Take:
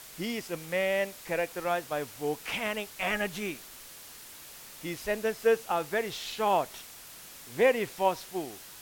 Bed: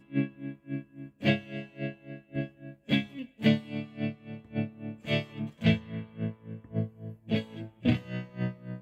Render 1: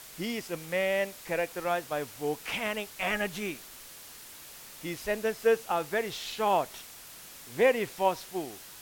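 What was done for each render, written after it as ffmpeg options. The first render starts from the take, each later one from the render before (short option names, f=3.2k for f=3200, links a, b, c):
-af anull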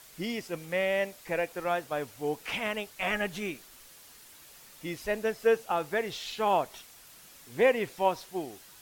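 -af "afftdn=nr=6:nf=-48"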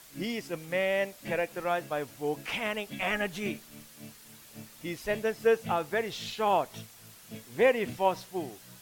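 -filter_complex "[1:a]volume=-16dB[a];[0:a][a]amix=inputs=2:normalize=0"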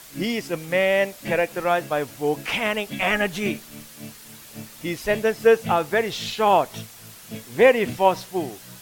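-af "volume=8.5dB"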